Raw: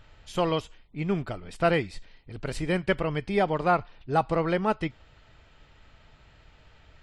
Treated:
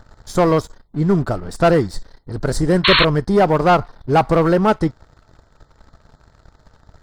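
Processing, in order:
Butterworth band-reject 2,600 Hz, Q 0.96
leveller curve on the samples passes 2
sound drawn into the spectrogram noise, 0:02.84–0:03.05, 930–4,400 Hz −20 dBFS
level +6 dB

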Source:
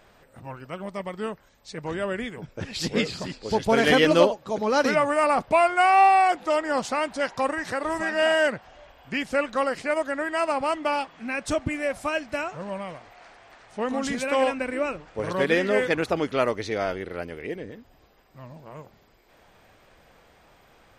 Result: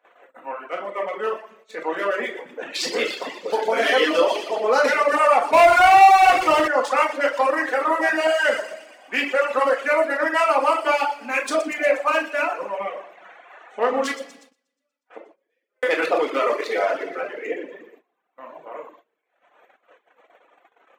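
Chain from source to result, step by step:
adaptive Wiener filter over 9 samples
0:14.11–0:15.83: gate with flip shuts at −28 dBFS, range −40 dB
delay with a high-pass on its return 120 ms, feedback 65%, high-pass 3,100 Hz, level −6.5 dB
brickwall limiter −16.5 dBFS, peak gain reduction 10 dB
Bessel high-pass filter 520 Hz, order 6
high-shelf EQ 2,800 Hz −2.5 dB
rectangular room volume 570 cubic metres, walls mixed, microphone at 1.9 metres
0:05.53–0:06.68: power curve on the samples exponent 0.7
reverb reduction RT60 1.2 s
noise gate −57 dBFS, range −19 dB
level +7.5 dB

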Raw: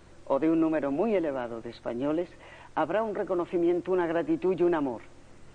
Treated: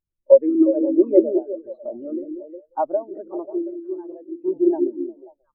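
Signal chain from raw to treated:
harmonic and percussive parts rebalanced percussive +9 dB
0:01.84–0:02.85: transient designer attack −3 dB, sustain +5 dB
0:03.51–0:04.46: output level in coarse steps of 14 dB
echo through a band-pass that steps 179 ms, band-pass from 260 Hz, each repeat 0.7 octaves, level −1 dB
auto-filter notch saw down 1.8 Hz 590–3,400 Hz
every bin expanded away from the loudest bin 2.5 to 1
level +6 dB

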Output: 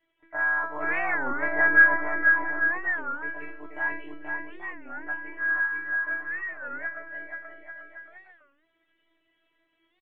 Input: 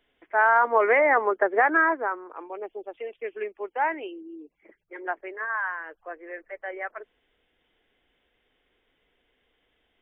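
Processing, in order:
sub-octave generator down 1 octave, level −1 dB
low-shelf EQ 430 Hz +7.5 dB
in parallel at −0.5 dB: brickwall limiter −14.5 dBFS, peak gain reduction 9 dB
on the sum: low-pass filter 2,000 Hz 12 dB per octave
one-pitch LPC vocoder at 8 kHz 150 Hz
spectral tilt +3.5 dB per octave
tuned comb filter 330 Hz, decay 0.41 s, harmonics all, mix 100%
on a send: bouncing-ball delay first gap 480 ms, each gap 0.75×, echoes 5
on the sum: wow of a warped record 33 1/3 rpm, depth 250 cents
level +7.5 dB

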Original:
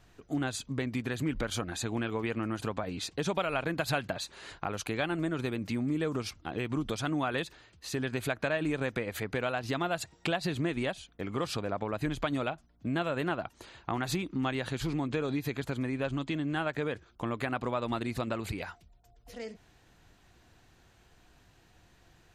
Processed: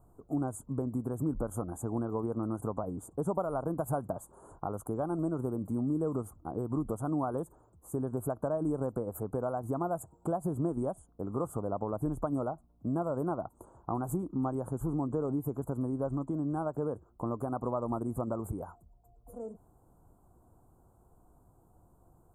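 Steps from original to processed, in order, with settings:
inverse Chebyshev band-stop filter 1,800–5,600 Hz, stop band 40 dB

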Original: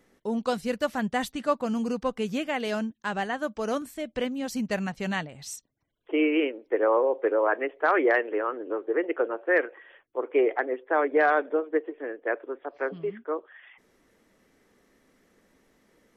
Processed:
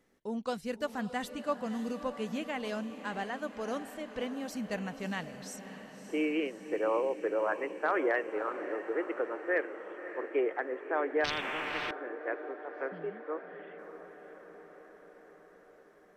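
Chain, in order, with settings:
feedback delay with all-pass diffusion 589 ms, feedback 67%, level −11.5 dB
0:11.24–0:11.91: every bin compressed towards the loudest bin 10 to 1
level −7.5 dB

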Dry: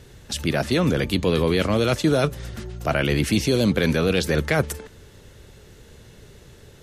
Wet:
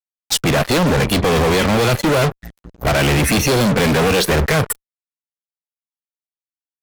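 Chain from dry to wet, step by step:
transient designer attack +2 dB, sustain −2 dB
noise reduction from a noise print of the clip's start 26 dB
fuzz pedal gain 36 dB, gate −39 dBFS

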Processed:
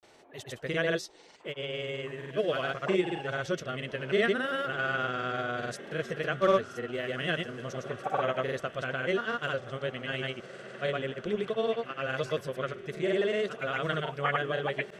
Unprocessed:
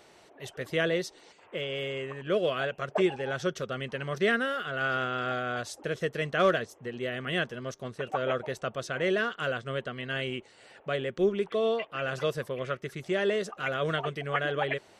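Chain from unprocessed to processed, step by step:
feedback delay with all-pass diffusion 1,702 ms, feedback 46%, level −15 dB
granular cloud, pitch spread up and down by 0 semitones

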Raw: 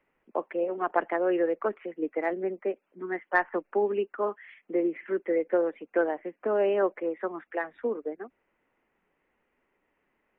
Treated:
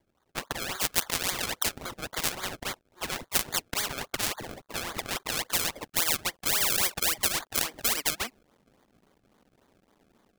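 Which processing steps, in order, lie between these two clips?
mu-law and A-law mismatch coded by A
automatic gain control gain up to 8.5 dB
high-pass filter sweep 1,200 Hz → 190 Hz, 0:05.11–0:08.54
sample-and-hold swept by an LFO 32×, swing 100% 3.6 Hz
every bin compressed towards the loudest bin 10 to 1
level −2.5 dB

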